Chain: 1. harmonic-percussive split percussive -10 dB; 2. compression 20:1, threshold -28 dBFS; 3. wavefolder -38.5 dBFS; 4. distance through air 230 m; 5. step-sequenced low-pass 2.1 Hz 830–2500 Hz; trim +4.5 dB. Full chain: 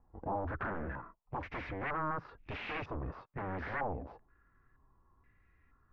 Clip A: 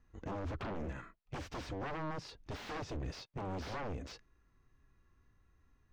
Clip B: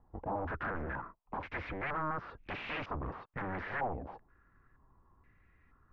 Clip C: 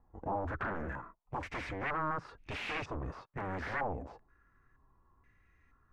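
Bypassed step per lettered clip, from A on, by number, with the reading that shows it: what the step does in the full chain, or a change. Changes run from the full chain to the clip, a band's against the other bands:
5, 2 kHz band -6.5 dB; 1, 4 kHz band +2.0 dB; 4, 4 kHz band +4.0 dB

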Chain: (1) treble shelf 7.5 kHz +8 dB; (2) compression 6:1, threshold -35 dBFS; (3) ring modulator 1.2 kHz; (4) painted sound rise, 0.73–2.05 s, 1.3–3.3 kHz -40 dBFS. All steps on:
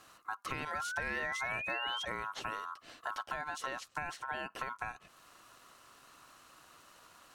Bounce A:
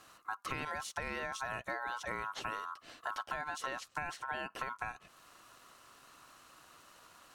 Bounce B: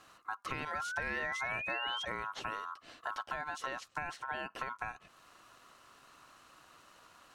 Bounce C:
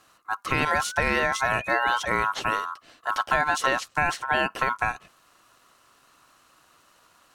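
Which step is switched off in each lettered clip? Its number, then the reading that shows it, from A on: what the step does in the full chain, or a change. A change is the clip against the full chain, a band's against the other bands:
4, 4 kHz band -5.5 dB; 1, 8 kHz band -3.0 dB; 2, mean gain reduction 11.5 dB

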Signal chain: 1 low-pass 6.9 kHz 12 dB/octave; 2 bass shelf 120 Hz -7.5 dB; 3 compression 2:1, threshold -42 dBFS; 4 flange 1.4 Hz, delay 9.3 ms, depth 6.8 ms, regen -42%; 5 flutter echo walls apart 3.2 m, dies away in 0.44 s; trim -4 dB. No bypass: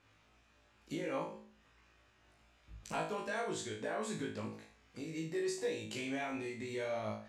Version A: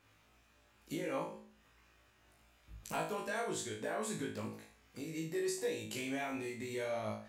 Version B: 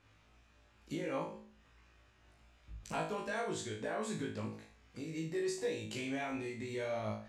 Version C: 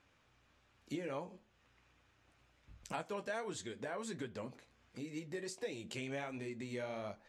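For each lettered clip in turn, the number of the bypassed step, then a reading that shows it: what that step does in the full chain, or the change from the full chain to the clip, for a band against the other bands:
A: 1, 8 kHz band +3.5 dB; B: 2, 125 Hz band +3.0 dB; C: 5, 125 Hz band +1.5 dB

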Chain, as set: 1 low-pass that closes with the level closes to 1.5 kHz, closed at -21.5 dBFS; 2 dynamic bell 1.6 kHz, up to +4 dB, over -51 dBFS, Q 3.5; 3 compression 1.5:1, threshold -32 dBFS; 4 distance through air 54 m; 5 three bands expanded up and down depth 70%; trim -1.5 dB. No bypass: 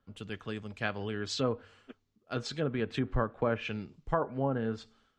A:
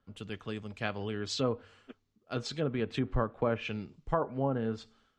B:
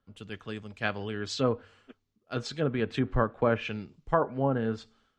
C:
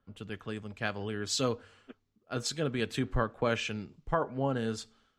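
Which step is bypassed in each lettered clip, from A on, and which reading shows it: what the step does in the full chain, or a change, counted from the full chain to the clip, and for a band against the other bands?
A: 2, 2 kHz band -2.5 dB; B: 3, momentary loudness spread change +3 LU; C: 1, 8 kHz band +9.5 dB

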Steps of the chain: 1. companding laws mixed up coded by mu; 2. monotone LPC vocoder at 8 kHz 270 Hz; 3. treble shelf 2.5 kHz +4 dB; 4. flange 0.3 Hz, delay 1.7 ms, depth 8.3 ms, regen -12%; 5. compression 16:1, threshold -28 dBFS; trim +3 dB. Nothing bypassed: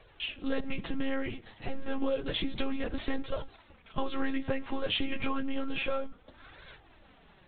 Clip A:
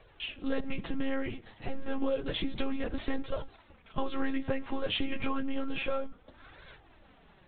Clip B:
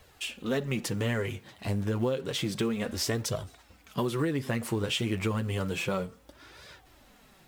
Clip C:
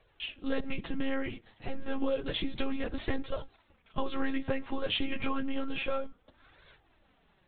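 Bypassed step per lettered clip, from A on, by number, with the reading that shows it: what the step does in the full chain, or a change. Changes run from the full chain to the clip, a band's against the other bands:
3, 4 kHz band -2.0 dB; 2, 125 Hz band +12.0 dB; 1, distortion -24 dB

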